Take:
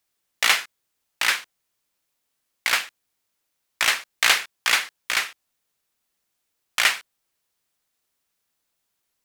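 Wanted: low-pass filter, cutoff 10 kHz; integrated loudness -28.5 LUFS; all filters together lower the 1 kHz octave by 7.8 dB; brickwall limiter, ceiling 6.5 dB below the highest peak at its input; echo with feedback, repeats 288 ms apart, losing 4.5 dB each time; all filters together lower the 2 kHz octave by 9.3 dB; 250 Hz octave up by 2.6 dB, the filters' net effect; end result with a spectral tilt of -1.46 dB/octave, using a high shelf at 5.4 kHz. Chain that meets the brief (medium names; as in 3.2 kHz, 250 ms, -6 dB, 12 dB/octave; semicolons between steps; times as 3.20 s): low-pass 10 kHz; peaking EQ 250 Hz +4 dB; peaking EQ 1 kHz -7 dB; peaking EQ 2 kHz -8.5 dB; treble shelf 5.4 kHz -8 dB; peak limiter -15.5 dBFS; feedback delay 288 ms, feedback 60%, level -4.5 dB; trim +3.5 dB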